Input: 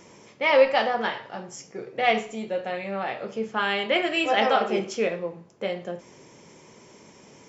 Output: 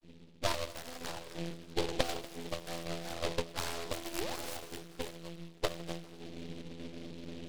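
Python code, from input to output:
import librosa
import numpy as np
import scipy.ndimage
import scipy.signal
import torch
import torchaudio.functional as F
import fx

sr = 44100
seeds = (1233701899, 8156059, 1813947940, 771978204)

p1 = fx.dynamic_eq(x, sr, hz=170.0, q=0.79, threshold_db=-40.0, ratio=4.0, max_db=5)
p2 = fx.rider(p1, sr, range_db=5, speed_s=2.0)
p3 = fx.vocoder(p2, sr, bands=32, carrier='saw', carrier_hz=84.3)
p4 = fx.auto_wah(p3, sr, base_hz=220.0, top_hz=4300.0, q=2.0, full_db=-19.0, direction='up')
p5 = fx.spec_paint(p4, sr, seeds[0], shape='rise', start_s=4.18, length_s=0.39, low_hz=310.0, high_hz=5200.0, level_db=-41.0)
p6 = p5 + fx.echo_heads(p5, sr, ms=80, heads='second and third', feedback_pct=59, wet_db=-18, dry=0)
p7 = fx.env_phaser(p6, sr, low_hz=480.0, high_hz=2300.0, full_db=-31.5)
p8 = fx.tilt_eq(p7, sr, slope=-2.5)
p9 = np.maximum(p8, 0.0)
p10 = fx.noise_mod_delay(p9, sr, seeds[1], noise_hz=2900.0, depth_ms=0.13)
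y = p10 * 10.0 ** (5.5 / 20.0)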